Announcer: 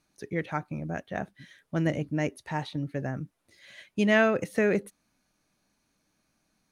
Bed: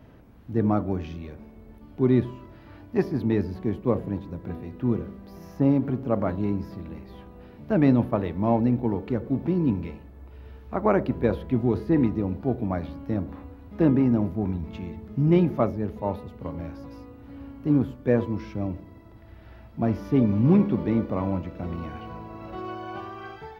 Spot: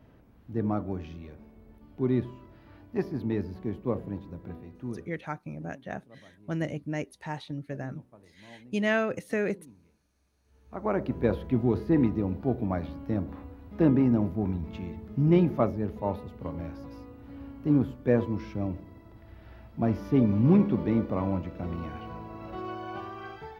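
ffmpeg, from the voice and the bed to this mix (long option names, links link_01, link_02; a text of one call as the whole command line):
ffmpeg -i stem1.wav -i stem2.wav -filter_complex "[0:a]adelay=4750,volume=-4dB[link_01];[1:a]volume=21.5dB,afade=type=out:start_time=4.41:duration=0.91:silence=0.0668344,afade=type=in:start_time=10.45:duration=0.86:silence=0.0421697[link_02];[link_01][link_02]amix=inputs=2:normalize=0" out.wav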